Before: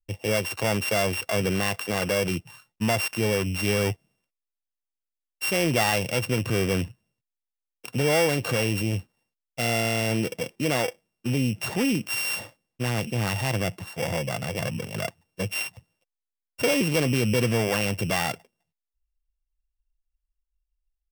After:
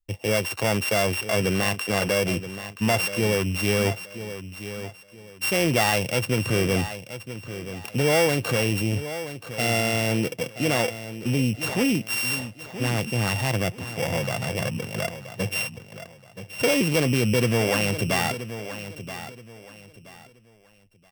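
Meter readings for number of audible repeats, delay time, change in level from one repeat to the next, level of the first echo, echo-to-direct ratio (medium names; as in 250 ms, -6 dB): 3, 976 ms, -11.0 dB, -12.0 dB, -11.5 dB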